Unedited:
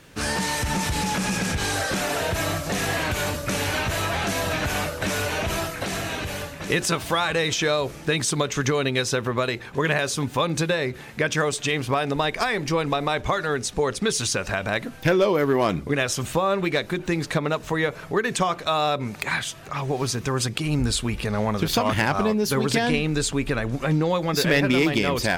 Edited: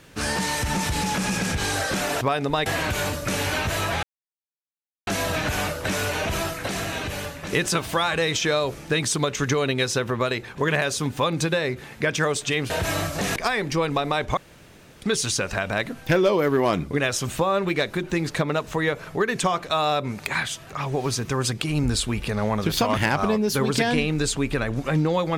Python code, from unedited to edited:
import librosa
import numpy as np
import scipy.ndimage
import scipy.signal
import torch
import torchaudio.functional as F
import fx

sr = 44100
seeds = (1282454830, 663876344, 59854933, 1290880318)

y = fx.edit(x, sr, fx.swap(start_s=2.21, length_s=0.66, other_s=11.87, other_length_s=0.45),
    fx.insert_silence(at_s=4.24, length_s=1.04),
    fx.room_tone_fill(start_s=13.33, length_s=0.65), tone=tone)